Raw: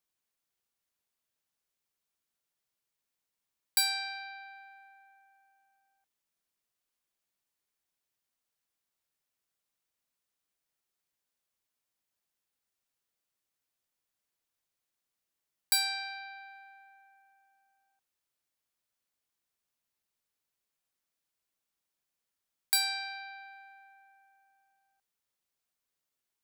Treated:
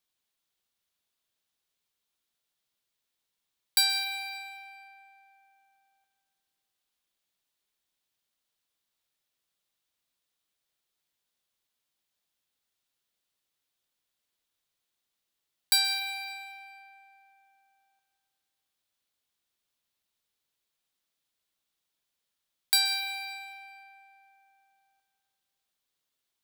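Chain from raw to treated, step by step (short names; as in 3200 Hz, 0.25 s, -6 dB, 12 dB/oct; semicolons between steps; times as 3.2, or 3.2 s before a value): bell 3600 Hz +6.5 dB 0.71 oct; plate-style reverb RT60 1.9 s, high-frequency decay 0.7×, pre-delay 0.115 s, DRR 9.5 dB; gain +1.5 dB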